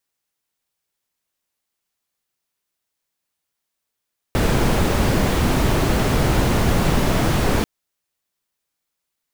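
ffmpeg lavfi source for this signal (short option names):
-f lavfi -i "anoisesrc=c=brown:a=0.661:d=3.29:r=44100:seed=1"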